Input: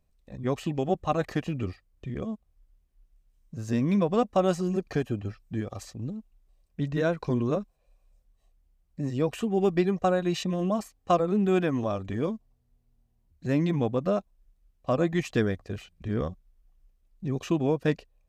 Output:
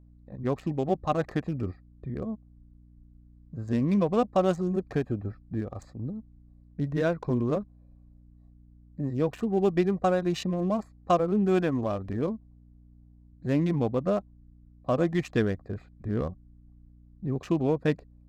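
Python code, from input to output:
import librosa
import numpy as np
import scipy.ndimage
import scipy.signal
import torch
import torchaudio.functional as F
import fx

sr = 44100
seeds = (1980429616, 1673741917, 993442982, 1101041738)

y = fx.wiener(x, sr, points=15)
y = fx.add_hum(y, sr, base_hz=60, snr_db=25)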